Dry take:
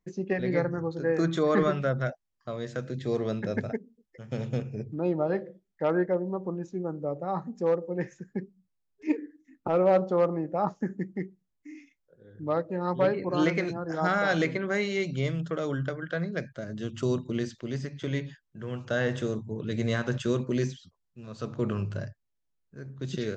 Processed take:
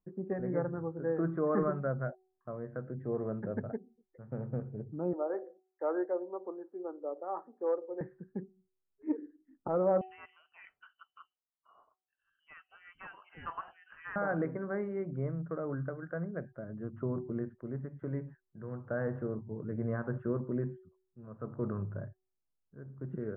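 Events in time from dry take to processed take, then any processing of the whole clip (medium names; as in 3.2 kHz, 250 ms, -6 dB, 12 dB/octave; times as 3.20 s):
5.13–8.01 s: steep high-pass 310 Hz
10.01–14.16 s: frequency inversion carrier 3.2 kHz
whole clip: steep low-pass 1.5 kHz 36 dB/octave; de-hum 374.6 Hz, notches 2; trim -6 dB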